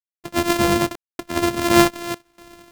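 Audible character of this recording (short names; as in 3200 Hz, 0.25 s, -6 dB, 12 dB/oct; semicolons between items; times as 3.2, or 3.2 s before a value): a buzz of ramps at a fixed pitch in blocks of 128 samples; random-step tremolo 4.2 Hz, depth 100%; a quantiser's noise floor 12-bit, dither none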